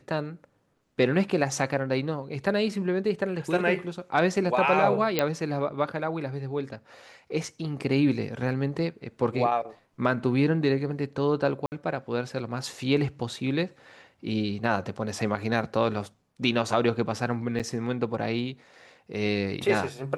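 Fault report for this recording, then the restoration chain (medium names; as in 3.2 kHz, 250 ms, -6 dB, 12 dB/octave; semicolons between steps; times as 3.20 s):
5.19 s: pop -8 dBFS
11.66–11.72 s: dropout 59 ms
17.59–17.60 s: dropout 7.2 ms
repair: de-click; interpolate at 11.66 s, 59 ms; interpolate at 17.59 s, 7.2 ms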